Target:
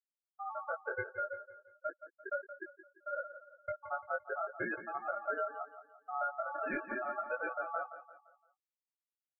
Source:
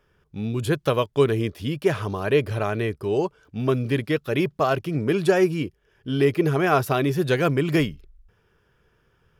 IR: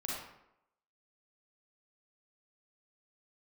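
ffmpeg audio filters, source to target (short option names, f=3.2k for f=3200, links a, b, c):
-filter_complex "[0:a]asplit=3[a][b][c];[a]afade=t=out:st=1.03:d=0.02[d];[b]highpass=430,afade=t=in:st=1.03:d=0.02,afade=t=out:st=3.82:d=0.02[e];[c]afade=t=in:st=3.82:d=0.02[f];[d][e][f]amix=inputs=3:normalize=0,afftfilt=real='re*gte(hypot(re,im),0.447)':imag='im*gte(hypot(re,im),0.447)':win_size=1024:overlap=0.75,afftdn=nr=33:nf=-41,equalizer=f=560:t=o:w=2.2:g=9,acompressor=threshold=-27dB:ratio=3,aeval=exprs='val(0)*sin(2*PI*1000*n/s)':c=same,flanger=delay=15.5:depth=4.3:speed=0.39,aecho=1:1:172|344|516|688:0.237|0.0972|0.0399|0.0163,volume=-5.5dB"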